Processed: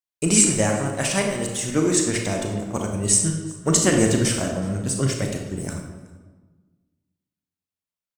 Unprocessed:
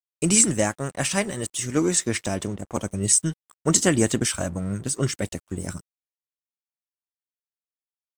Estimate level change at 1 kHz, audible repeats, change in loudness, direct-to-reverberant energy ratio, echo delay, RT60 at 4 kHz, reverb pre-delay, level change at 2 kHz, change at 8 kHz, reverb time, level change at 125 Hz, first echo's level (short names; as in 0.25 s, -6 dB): +2.5 dB, 1, +2.0 dB, 1.5 dB, 0.373 s, 1.0 s, 30 ms, +2.0 dB, +1.5 dB, 1.4 s, +3.0 dB, -23.5 dB